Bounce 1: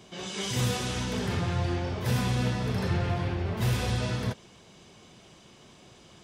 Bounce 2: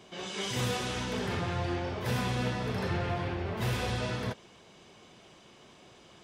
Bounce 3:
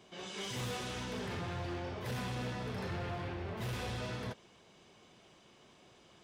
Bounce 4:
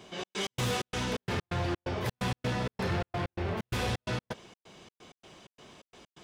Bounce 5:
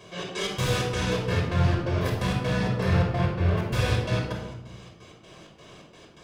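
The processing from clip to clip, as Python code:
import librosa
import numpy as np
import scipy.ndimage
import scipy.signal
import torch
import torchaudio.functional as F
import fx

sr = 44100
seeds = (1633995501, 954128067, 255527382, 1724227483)

y1 = fx.bass_treble(x, sr, bass_db=-6, treble_db=-5)
y2 = np.clip(y1, -10.0 ** (-28.5 / 20.0), 10.0 ** (-28.5 / 20.0))
y2 = F.gain(torch.from_numpy(y2), -6.0).numpy()
y3 = fx.step_gate(y2, sr, bpm=129, pattern='xx.x.xx.', floor_db=-60.0, edge_ms=4.5)
y3 = F.gain(torch.from_numpy(y3), 8.5).numpy()
y4 = fx.room_shoebox(y3, sr, seeds[0], volume_m3=3200.0, walls='furnished', distance_m=5.5)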